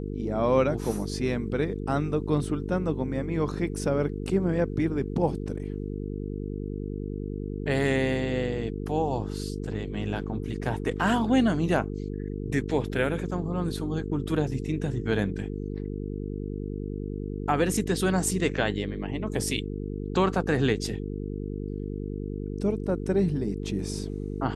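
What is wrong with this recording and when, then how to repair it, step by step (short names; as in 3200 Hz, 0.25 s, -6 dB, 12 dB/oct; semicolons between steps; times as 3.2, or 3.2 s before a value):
buzz 50 Hz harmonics 9 -33 dBFS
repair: de-hum 50 Hz, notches 9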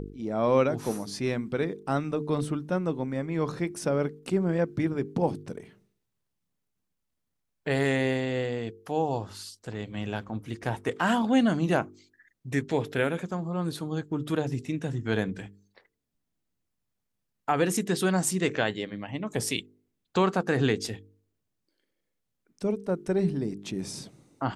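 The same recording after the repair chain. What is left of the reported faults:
none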